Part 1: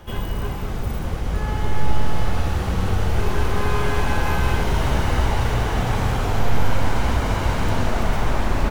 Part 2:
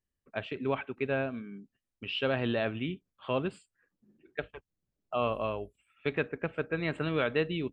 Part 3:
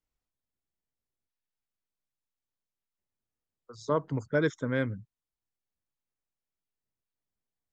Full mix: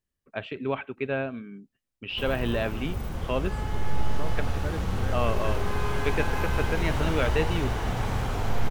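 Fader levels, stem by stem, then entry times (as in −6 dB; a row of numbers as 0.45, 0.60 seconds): −7.0, +2.0, −10.5 decibels; 2.10, 0.00, 0.30 seconds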